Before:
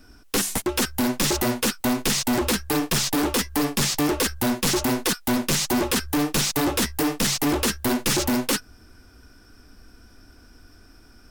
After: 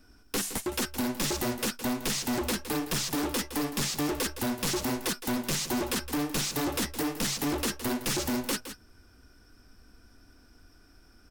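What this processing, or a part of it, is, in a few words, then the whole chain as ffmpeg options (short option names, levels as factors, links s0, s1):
ducked delay: -filter_complex "[0:a]asplit=3[s0][s1][s2];[s1]adelay=164,volume=0.447[s3];[s2]apad=whole_len=505880[s4];[s3][s4]sidechaincompress=threshold=0.0447:ratio=8:attack=35:release=639[s5];[s0][s5]amix=inputs=2:normalize=0,volume=0.422"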